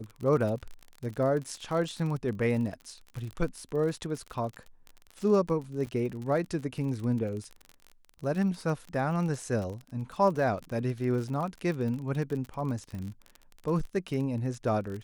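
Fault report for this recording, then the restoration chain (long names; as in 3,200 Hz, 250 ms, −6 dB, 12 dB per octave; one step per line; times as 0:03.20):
surface crackle 41 per second −35 dBFS
0:05.86–0:05.87: drop-out 7.7 ms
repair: click removal
repair the gap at 0:05.86, 7.7 ms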